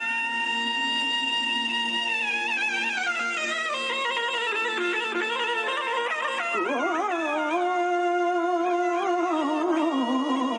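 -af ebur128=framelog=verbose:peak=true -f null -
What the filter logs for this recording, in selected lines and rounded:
Integrated loudness:
  I:         -24.8 LUFS
  Threshold: -34.8 LUFS
Loudness range:
  LRA:         1.4 LU
  Threshold: -45.0 LUFS
  LRA low:   -25.5 LUFS
  LRA high:  -24.1 LUFS
True peak:
  Peak:      -13.8 dBFS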